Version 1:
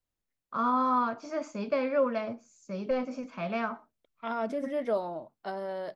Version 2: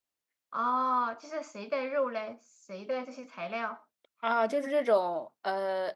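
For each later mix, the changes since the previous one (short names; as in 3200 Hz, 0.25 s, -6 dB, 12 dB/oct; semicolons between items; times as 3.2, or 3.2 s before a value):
second voice +7.5 dB; master: add HPF 620 Hz 6 dB/oct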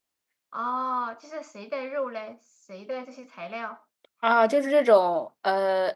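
second voice +7.5 dB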